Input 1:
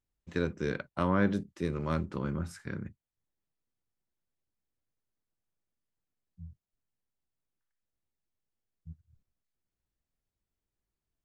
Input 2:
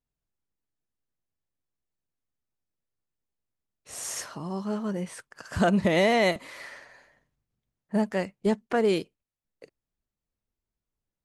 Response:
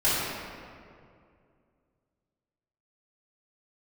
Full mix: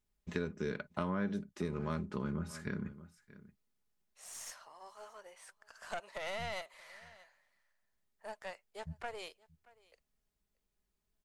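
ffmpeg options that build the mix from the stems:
-filter_complex "[0:a]aecho=1:1:4.8:0.48,volume=1.33,asplit=2[s0][s1];[s1]volume=0.075[s2];[1:a]highpass=f=590:w=0.5412,highpass=f=590:w=1.3066,aeval=exprs='0.211*(cos(1*acos(clip(val(0)/0.211,-1,1)))-cos(1*PI/2))+0.0376*(cos(4*acos(clip(val(0)/0.211,-1,1)))-cos(4*PI/2))':c=same,adelay=300,volume=0.237,asplit=2[s3][s4];[s4]volume=0.0631[s5];[s2][s5]amix=inputs=2:normalize=0,aecho=0:1:628:1[s6];[s0][s3][s6]amix=inputs=3:normalize=0,acompressor=threshold=0.0158:ratio=3"

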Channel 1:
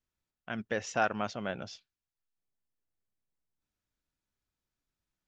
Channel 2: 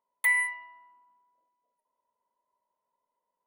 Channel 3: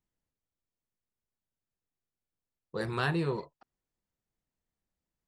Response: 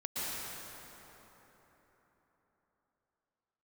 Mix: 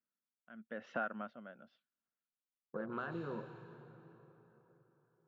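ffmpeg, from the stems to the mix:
-filter_complex "[0:a]dynaudnorm=f=110:g=7:m=2.37,aeval=exprs='val(0)*pow(10,-21*(0.5-0.5*cos(2*PI*0.96*n/s))/20)':c=same,volume=0.422[s0];[2:a]afwtdn=0.00794,bandreject=f=1900:w=5.4,acompressor=threshold=0.0316:ratio=6,volume=0.631,asplit=2[s1][s2];[s2]volume=0.133[s3];[s0][s1]amix=inputs=2:normalize=0,highpass=f=160:w=0.5412,highpass=f=160:w=1.3066,equalizer=f=230:t=q:w=4:g=8,equalizer=f=400:t=q:w=4:g=-4,equalizer=f=580:t=q:w=4:g=5,equalizer=f=870:t=q:w=4:g=-4,equalizer=f=1400:t=q:w=4:g=8,equalizer=f=2400:t=q:w=4:g=-8,lowpass=f=3000:w=0.5412,lowpass=f=3000:w=1.3066,acompressor=threshold=0.0112:ratio=3,volume=1[s4];[3:a]atrim=start_sample=2205[s5];[s3][s5]afir=irnorm=-1:irlink=0[s6];[s4][s6]amix=inputs=2:normalize=0"

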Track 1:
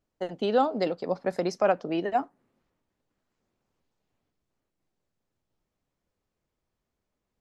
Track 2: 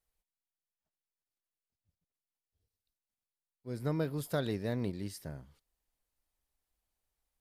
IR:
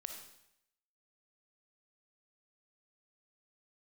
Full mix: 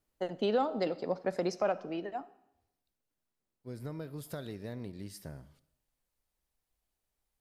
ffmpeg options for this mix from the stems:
-filter_complex "[0:a]acontrast=86,volume=0.251,afade=t=out:st=1.69:d=0.47:silence=0.298538,asplit=2[s0][s1];[s1]volume=0.473[s2];[1:a]acompressor=threshold=0.0112:ratio=4,volume=0.794,asplit=2[s3][s4];[s4]volume=0.422[s5];[2:a]atrim=start_sample=2205[s6];[s2][s5]amix=inputs=2:normalize=0[s7];[s7][s6]afir=irnorm=-1:irlink=0[s8];[s0][s3][s8]amix=inputs=3:normalize=0,alimiter=limit=0.1:level=0:latency=1:release=403"

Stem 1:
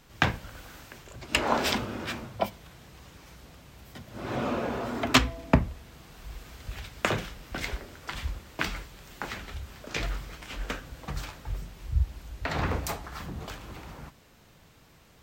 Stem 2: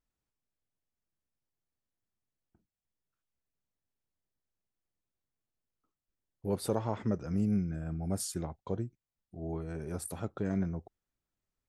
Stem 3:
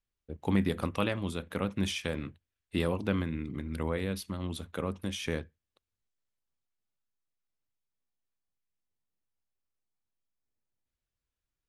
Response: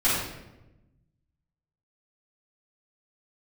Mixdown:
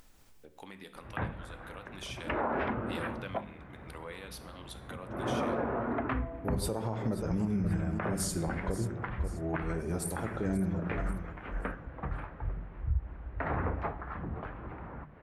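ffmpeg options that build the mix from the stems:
-filter_complex "[0:a]lowpass=f=1800:w=0.5412,lowpass=f=1800:w=1.3066,adelay=950,volume=1.06[s0];[1:a]volume=1.33,asplit=3[s1][s2][s3];[s2]volume=0.0944[s4];[s3]volume=0.282[s5];[2:a]highpass=f=980:p=1,dynaudnorm=f=160:g=21:m=3.16,adelay=150,volume=0.158,asplit=2[s6][s7];[s7]volume=0.0631[s8];[3:a]atrim=start_sample=2205[s9];[s4][s8]amix=inputs=2:normalize=0[s10];[s10][s9]afir=irnorm=-1:irlink=0[s11];[s5]aecho=0:1:534|1068|1602|2136:1|0.31|0.0961|0.0298[s12];[s0][s1][s6][s11][s12]amix=inputs=5:normalize=0,bandreject=f=50:t=h:w=6,bandreject=f=100:t=h:w=6,bandreject=f=150:t=h:w=6,bandreject=f=200:t=h:w=6,bandreject=f=250:t=h:w=6,acompressor=mode=upward:threshold=0.01:ratio=2.5,alimiter=limit=0.0794:level=0:latency=1:release=121"

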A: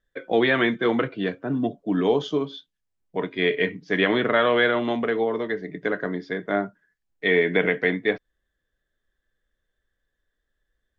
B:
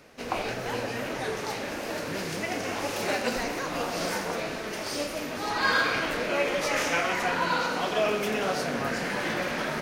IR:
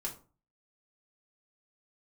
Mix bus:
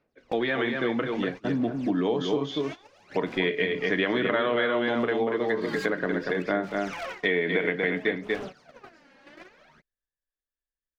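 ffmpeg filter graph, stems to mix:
-filter_complex "[0:a]dynaudnorm=f=320:g=11:m=5.01,volume=0.631,asplit=4[s0][s1][s2][s3];[s1]volume=0.168[s4];[s2]volume=0.562[s5];[1:a]lowpass=5300,aphaser=in_gain=1:out_gain=1:delay=3.7:decay=0.72:speed=0.6:type=sinusoidal,aeval=exprs='0.141*(abs(mod(val(0)/0.141+3,4)-2)-1)':c=same,volume=0.355[s6];[s3]apad=whole_len=433010[s7];[s6][s7]sidechaincompress=threshold=0.0251:ratio=8:attack=21:release=319[s8];[2:a]atrim=start_sample=2205[s9];[s4][s9]afir=irnorm=-1:irlink=0[s10];[s5]aecho=0:1:237:1[s11];[s0][s8][s10][s11]amix=inputs=4:normalize=0,agate=range=0.1:threshold=0.0251:ratio=16:detection=peak,acompressor=threshold=0.0708:ratio=4"

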